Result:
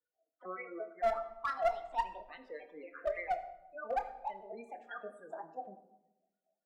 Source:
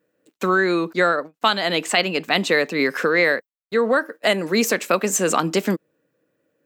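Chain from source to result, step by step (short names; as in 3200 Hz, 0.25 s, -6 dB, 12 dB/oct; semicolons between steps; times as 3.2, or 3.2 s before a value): trilling pitch shifter +4.5 st, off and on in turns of 0.113 s; spectral gate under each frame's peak -15 dB strong; dynamic EQ 4600 Hz, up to +5 dB, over -36 dBFS, Q 0.86; harmonic-percussive split percussive -12 dB; wah 3.5 Hz 650–1400 Hz, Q 14; one-sided clip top -30.5 dBFS; on a send: reverb RT60 1.0 s, pre-delay 26 ms, DRR 8 dB; on the sum: gain +1 dB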